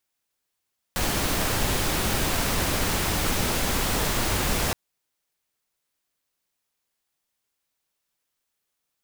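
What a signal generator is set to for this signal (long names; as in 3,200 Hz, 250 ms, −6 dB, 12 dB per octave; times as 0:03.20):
noise pink, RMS −24.5 dBFS 3.77 s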